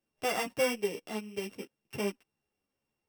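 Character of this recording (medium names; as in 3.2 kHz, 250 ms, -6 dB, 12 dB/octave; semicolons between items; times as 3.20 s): a buzz of ramps at a fixed pitch in blocks of 16 samples; a shimmering, thickened sound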